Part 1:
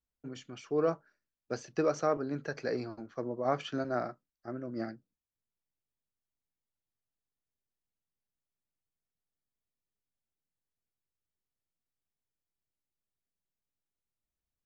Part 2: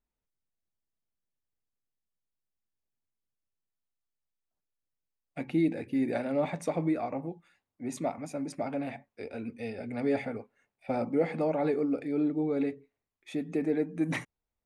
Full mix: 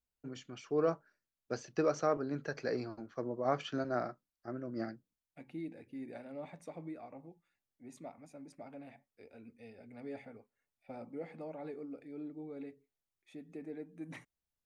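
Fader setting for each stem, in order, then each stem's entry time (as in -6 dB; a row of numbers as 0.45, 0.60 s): -2.0, -16.0 dB; 0.00, 0.00 s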